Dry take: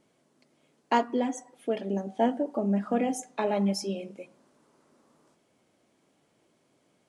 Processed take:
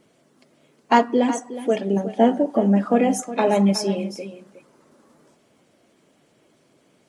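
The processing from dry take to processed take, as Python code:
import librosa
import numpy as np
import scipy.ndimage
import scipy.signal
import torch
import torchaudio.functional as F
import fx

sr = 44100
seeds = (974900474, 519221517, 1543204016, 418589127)

y = fx.spec_quant(x, sr, step_db=15)
y = y + 10.0 ** (-13.5 / 20.0) * np.pad(y, (int(365 * sr / 1000.0), 0))[:len(y)]
y = y * librosa.db_to_amplitude(9.0)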